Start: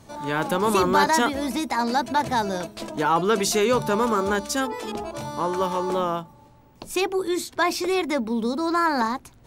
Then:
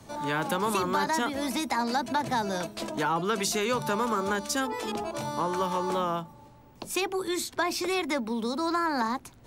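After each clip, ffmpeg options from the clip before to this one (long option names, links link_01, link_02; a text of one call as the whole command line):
ffmpeg -i in.wav -filter_complex "[0:a]acrossover=split=110|250|650[link_01][link_02][link_03][link_04];[link_01]acompressor=threshold=-57dB:ratio=4[link_05];[link_02]acompressor=threshold=-35dB:ratio=4[link_06];[link_03]acompressor=threshold=-36dB:ratio=4[link_07];[link_04]acompressor=threshold=-27dB:ratio=4[link_08];[link_05][link_06][link_07][link_08]amix=inputs=4:normalize=0" out.wav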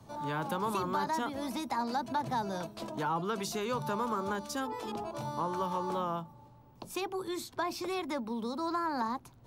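ffmpeg -i in.wav -af "equalizer=frequency=125:width_type=o:width=1:gain=6,equalizer=frequency=1000:width_type=o:width=1:gain=4,equalizer=frequency=2000:width_type=o:width=1:gain=-5,equalizer=frequency=8000:width_type=o:width=1:gain=-5,volume=-7dB" out.wav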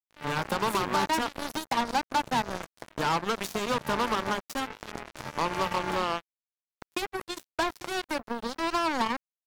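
ffmpeg -i in.wav -af "acrusher=bits=4:mix=0:aa=0.5,volume=5dB" out.wav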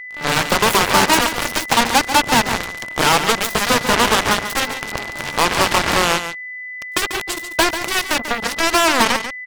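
ffmpeg -i in.wav -af "aeval=exprs='val(0)+0.00447*sin(2*PI*2000*n/s)':channel_layout=same,aeval=exprs='0.168*(cos(1*acos(clip(val(0)/0.168,-1,1)))-cos(1*PI/2))+0.0841*(cos(7*acos(clip(val(0)/0.168,-1,1)))-cos(7*PI/2))':channel_layout=same,aecho=1:1:141:0.316,volume=8.5dB" out.wav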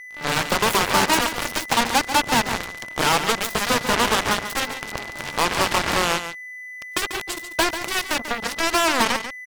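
ffmpeg -i in.wav -af "aeval=exprs='sgn(val(0))*max(abs(val(0))-0.00398,0)':channel_layout=same,volume=-4.5dB" out.wav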